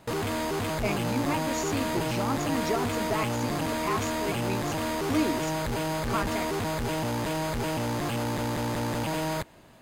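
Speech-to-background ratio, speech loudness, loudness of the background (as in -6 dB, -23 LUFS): -3.5 dB, -33.0 LUFS, -29.5 LUFS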